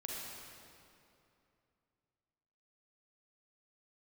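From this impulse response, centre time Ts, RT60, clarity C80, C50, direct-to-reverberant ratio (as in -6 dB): 0.15 s, 2.7 s, -0.5 dB, -3.0 dB, -4.0 dB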